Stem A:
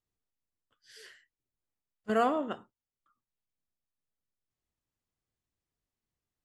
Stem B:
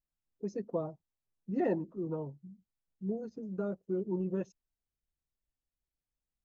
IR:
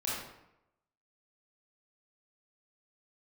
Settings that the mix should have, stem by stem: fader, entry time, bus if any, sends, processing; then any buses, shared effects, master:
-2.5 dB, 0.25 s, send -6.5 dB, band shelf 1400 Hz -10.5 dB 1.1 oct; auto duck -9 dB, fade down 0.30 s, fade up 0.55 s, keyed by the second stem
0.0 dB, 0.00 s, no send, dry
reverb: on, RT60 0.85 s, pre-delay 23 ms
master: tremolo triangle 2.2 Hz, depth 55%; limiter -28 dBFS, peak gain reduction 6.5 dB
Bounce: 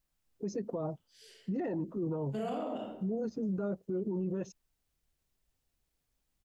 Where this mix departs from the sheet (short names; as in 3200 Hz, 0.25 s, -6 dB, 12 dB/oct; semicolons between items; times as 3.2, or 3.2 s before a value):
stem B 0.0 dB -> +10.0 dB; master: missing tremolo triangle 2.2 Hz, depth 55%